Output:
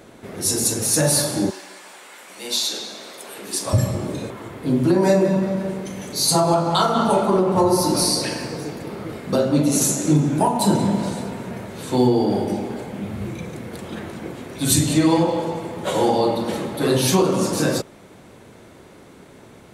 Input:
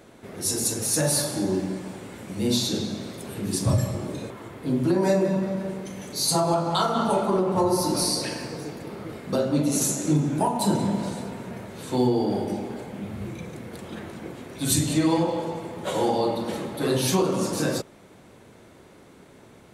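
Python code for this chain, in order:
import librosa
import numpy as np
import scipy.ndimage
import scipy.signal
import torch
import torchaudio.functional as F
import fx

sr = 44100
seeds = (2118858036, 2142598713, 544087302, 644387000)

y = fx.highpass(x, sr, hz=fx.line((1.49, 1200.0), (3.72, 500.0)), slope=12, at=(1.49, 3.72), fade=0.02)
y = F.gain(torch.from_numpy(y), 5.0).numpy()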